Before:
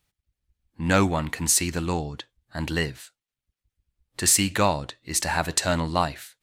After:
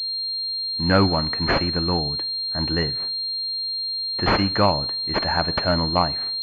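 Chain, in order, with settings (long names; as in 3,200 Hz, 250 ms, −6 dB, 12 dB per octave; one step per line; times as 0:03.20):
coupled-rooms reverb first 0.59 s, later 3.7 s, from −26 dB, DRR 18.5 dB
switching amplifier with a slow clock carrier 4,200 Hz
level +3 dB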